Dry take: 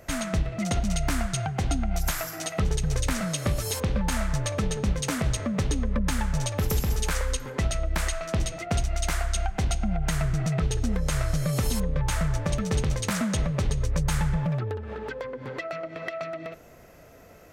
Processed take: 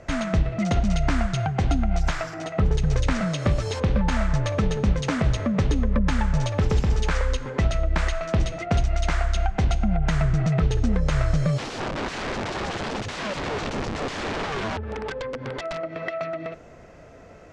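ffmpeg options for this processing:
-filter_complex "[0:a]asettb=1/sr,asplit=3[s0][s1][s2];[s0]atrim=end=2.344[s3];[s1]atrim=start=2.34:end=2.75,asetpts=PTS-STARTPTS,afade=t=in:d=0.004:c=qsin,afade=t=out:st=0.406:d=0.004:c=qsin,highshelf=f=2800:g=-10[s4];[s2]atrim=start=2.746[s5];[s3][s4]acrossfade=d=0.004:c1=hsin:c2=qsin[s6];[s6][s5]acrossfade=d=0.004:c1=qsin:c2=hsin,asplit=3[s7][s8][s9];[s7]afade=t=out:st=11.57:d=0.02[s10];[s8]aeval=exprs='(mod(22.4*val(0)+1,2)-1)/22.4':c=same,afade=t=in:st=11.57:d=0.02,afade=t=out:st=15.78:d=0.02[s11];[s9]afade=t=in:st=15.78:d=0.02[s12];[s10][s11][s12]amix=inputs=3:normalize=0,acrossover=split=6400[s13][s14];[s14]acompressor=threshold=0.00562:ratio=4:attack=1:release=60[s15];[s13][s15]amix=inputs=2:normalize=0,lowpass=f=8100:w=0.5412,lowpass=f=8100:w=1.3066,highshelf=f=3700:g=-8.5,volume=1.68"

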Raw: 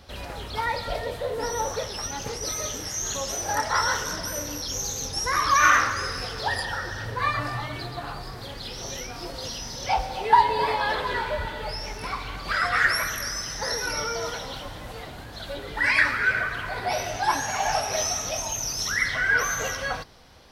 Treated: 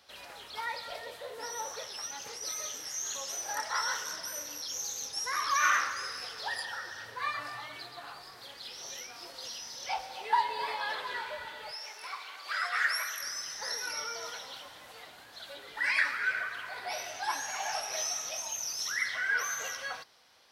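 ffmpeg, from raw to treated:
-filter_complex "[0:a]asettb=1/sr,asplit=3[s0][s1][s2];[s0]atrim=end=11.714[s3];[s1]atrim=start=11.71:end=13.22,asetpts=PTS-STARTPTS,afade=t=in:d=0.004:c=qsin,afade=t=out:st=1.506:d=0.004:c=qsin,highpass=460[s4];[s2]atrim=start=13.216[s5];[s3][s4]acrossfade=d=0.004:c1=hsin:c2=qsin[s6];[s6][s5]acrossfade=d=0.004:c1=qsin:c2=hsin,highpass=f=1200:p=1,volume=0.501"

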